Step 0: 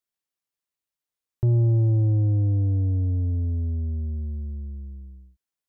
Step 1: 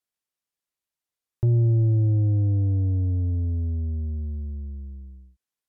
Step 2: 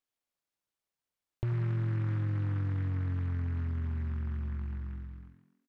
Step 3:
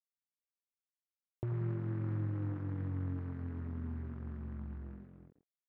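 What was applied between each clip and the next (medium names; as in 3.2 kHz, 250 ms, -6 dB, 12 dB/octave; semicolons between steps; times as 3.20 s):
low-pass that closes with the level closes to 570 Hz, closed at -18 dBFS
compression 3:1, threshold -32 dBFS, peak gain reduction 10 dB; on a send: frequency-shifting echo 88 ms, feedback 53%, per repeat +43 Hz, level -14 dB; on the sum: delay time shaken by noise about 1.3 kHz, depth 0.1 ms; trim -2 dB
Schroeder reverb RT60 1.5 s, combs from 29 ms, DRR 11 dB; crossover distortion -52.5 dBFS; band-pass filter 370 Hz, Q 0.61; trim +1 dB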